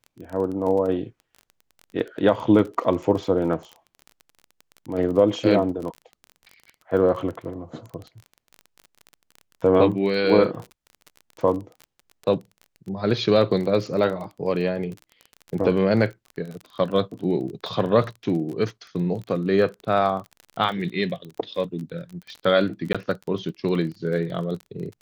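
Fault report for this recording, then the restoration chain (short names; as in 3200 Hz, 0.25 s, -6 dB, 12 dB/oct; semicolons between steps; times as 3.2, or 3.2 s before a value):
crackle 26/s -31 dBFS
22.93–22.95 gap 16 ms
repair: de-click; interpolate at 22.93, 16 ms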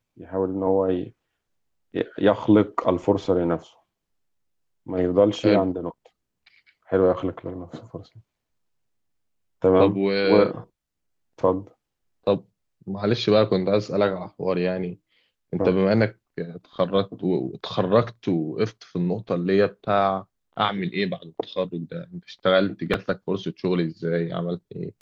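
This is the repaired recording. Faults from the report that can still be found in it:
none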